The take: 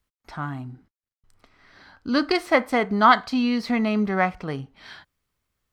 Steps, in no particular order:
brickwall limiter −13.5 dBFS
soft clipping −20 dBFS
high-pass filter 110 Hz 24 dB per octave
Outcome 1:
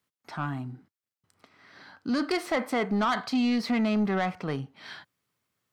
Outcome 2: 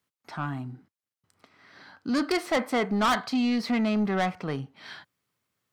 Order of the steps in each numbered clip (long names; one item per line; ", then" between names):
brickwall limiter, then high-pass filter, then soft clipping
high-pass filter, then soft clipping, then brickwall limiter